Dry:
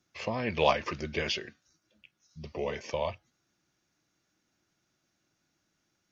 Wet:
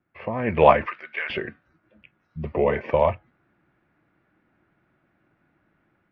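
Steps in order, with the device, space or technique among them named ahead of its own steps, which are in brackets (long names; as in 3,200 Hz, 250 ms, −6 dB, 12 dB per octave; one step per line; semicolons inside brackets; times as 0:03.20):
0:00.86–0:01.30: high-pass filter 1,500 Hz 12 dB per octave
action camera in a waterproof case (low-pass filter 2,100 Hz 24 dB per octave; automatic gain control gain up to 10 dB; level +2.5 dB; AAC 96 kbit/s 48,000 Hz)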